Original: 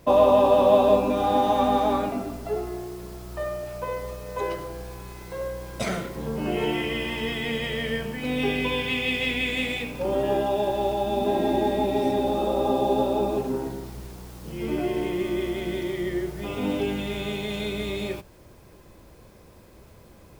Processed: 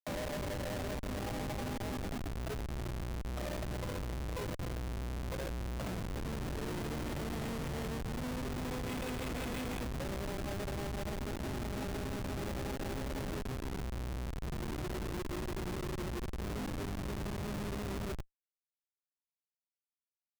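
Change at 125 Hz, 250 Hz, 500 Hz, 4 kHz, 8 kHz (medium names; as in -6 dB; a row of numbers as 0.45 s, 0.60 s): -3.0 dB, -12.0 dB, -18.5 dB, -14.0 dB, -4.0 dB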